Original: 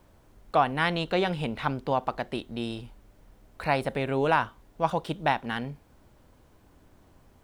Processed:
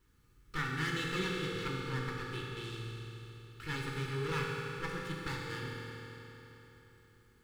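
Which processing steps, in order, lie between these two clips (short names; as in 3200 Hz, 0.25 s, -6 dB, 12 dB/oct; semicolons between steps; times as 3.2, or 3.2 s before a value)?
minimum comb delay 2.3 ms; Butterworth band-stop 660 Hz, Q 0.8; reverb RT60 3.8 s, pre-delay 3 ms, DRR -3.5 dB; gain -9 dB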